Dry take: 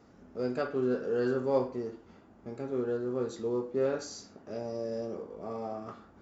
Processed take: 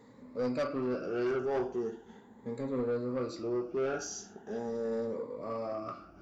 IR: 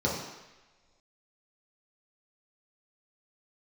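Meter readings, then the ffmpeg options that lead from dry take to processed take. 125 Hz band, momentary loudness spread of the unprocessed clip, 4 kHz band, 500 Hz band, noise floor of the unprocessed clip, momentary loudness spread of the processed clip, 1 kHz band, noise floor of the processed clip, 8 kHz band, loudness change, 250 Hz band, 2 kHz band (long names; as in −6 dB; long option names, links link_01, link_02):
−2.0 dB, 14 LU, −0.5 dB, −2.0 dB, −58 dBFS, 11 LU, 0.0 dB, −56 dBFS, can't be measured, −1.5 dB, −1.0 dB, 0.0 dB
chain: -af "afftfilt=real='re*pow(10,14/40*sin(2*PI*(1*log(max(b,1)*sr/1024/100)/log(2)-(0.4)*(pts-256)/sr)))':imag='im*pow(10,14/40*sin(2*PI*(1*log(max(b,1)*sr/1024/100)/log(2)-(0.4)*(pts-256)/sr)))':win_size=1024:overlap=0.75,equalizer=frequency=78:width_type=o:width=0.56:gain=-8,asoftclip=type=tanh:threshold=-26.5dB"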